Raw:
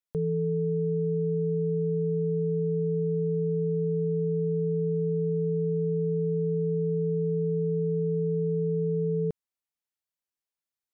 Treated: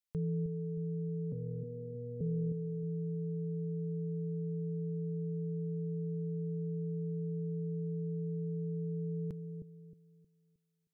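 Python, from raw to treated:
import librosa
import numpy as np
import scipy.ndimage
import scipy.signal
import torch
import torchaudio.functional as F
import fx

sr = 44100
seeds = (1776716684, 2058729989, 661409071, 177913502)

y = fx.peak_eq(x, sr, hz=530.0, db=-13.0, octaves=1.8)
y = fx.robotise(y, sr, hz=120.0, at=(1.32, 2.21))
y = fx.echo_bbd(y, sr, ms=312, stages=1024, feedback_pct=33, wet_db=-7)
y = y * librosa.db_to_amplitude(-1.5)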